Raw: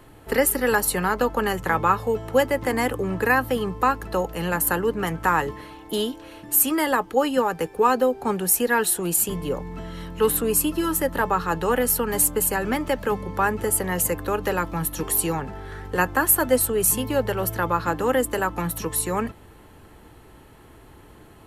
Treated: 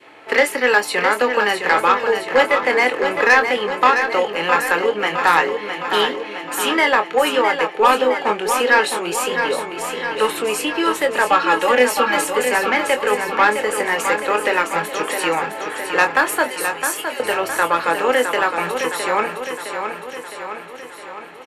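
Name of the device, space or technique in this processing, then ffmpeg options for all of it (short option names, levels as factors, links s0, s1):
intercom: -filter_complex "[0:a]adynamicequalizer=threshold=0.02:dfrequency=1100:dqfactor=1:tfrequency=1100:tqfactor=1:attack=5:release=100:ratio=0.375:range=2:mode=cutabove:tftype=bell,asettb=1/sr,asplit=3[s0][s1][s2];[s0]atrim=end=11.304[s3];[s1]atrim=start=11.3:end=12.19,asetpts=PTS-STARTPTS,afade=t=in:d=0.004:c=qsin,afade=t=out:st=0.886:d=0.004:c=qsin,aecho=1:1:3.6:0.95,atrim=end_sample=39249[s4];[s2]atrim=start=12.186[s5];[s3][s4]acrossfade=d=0.004:c1=hsin:c2=qsin[s6];[s6][s5]acrossfade=d=0.004:c1=qsin:c2=hsin,asettb=1/sr,asplit=3[s7][s8][s9];[s7]atrim=end=16.484[s10];[s8]atrim=start=16.48:end=17.2,asetpts=PTS-STARTPTS,afade=t=in:d=0.004:c=qsin,afade=t=out:st=0.716:d=0.004:c=qsin,aderivative[s11];[s9]atrim=start=17.196[s12];[s10][s11]acrossfade=d=0.004:c1=hsin:c2=qsin[s13];[s13][s12]acrossfade=d=0.004:c1=qsin:c2=hsin,highpass=500,lowpass=4500,equalizer=f=2300:t=o:w=0.49:g=8,asoftclip=type=tanh:threshold=0.178,asplit=2[s14][s15];[s15]adelay=24,volume=0.398[s16];[s14][s16]amix=inputs=2:normalize=0,aecho=1:1:662|1324|1986|2648|3310|3972|4634|5296:0.447|0.264|0.155|0.0917|0.0541|0.0319|0.0188|0.0111,volume=2.66"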